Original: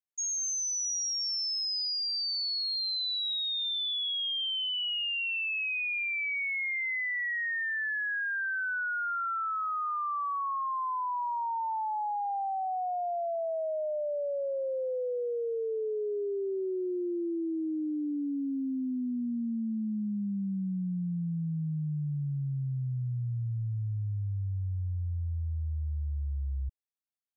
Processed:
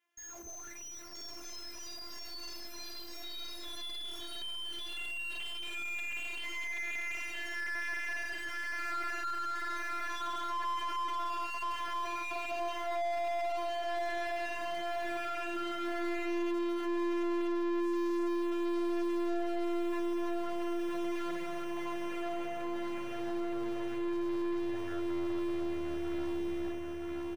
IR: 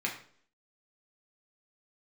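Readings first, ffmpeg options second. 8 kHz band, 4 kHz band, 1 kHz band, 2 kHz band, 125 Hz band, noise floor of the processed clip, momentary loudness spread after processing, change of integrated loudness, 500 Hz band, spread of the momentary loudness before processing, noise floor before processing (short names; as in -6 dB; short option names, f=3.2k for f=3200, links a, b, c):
n/a, -10.5 dB, -3.5 dB, -5.5 dB, under -20 dB, -45 dBFS, 10 LU, -5.0 dB, -1.5 dB, 5 LU, -32 dBFS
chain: -filter_complex "[0:a]aeval=exprs='(tanh(141*val(0)+0.35)-tanh(0.35))/141':c=same[a];[1:a]atrim=start_sample=2205,asetrate=61740,aresample=44100[b];[a][b]afir=irnorm=-1:irlink=0,acrusher=bits=4:mode=log:mix=0:aa=0.000001,afftfilt=real='hypot(re,im)*cos(PI*b)':imag='0':win_size=512:overlap=0.75,equalizer=f=125:t=o:w=1:g=-9,equalizer=f=2k:t=o:w=1:g=5,equalizer=f=4k:t=o:w=1:g=-8,aecho=1:1:972|1944|2916|3888|4860|5832:0.501|0.261|0.136|0.0705|0.0366|0.0191,asplit=2[c][d];[d]highpass=f=720:p=1,volume=35dB,asoftclip=type=tanh:threshold=-26dB[e];[c][e]amix=inputs=2:normalize=0,lowpass=f=1.1k:p=1,volume=-6dB"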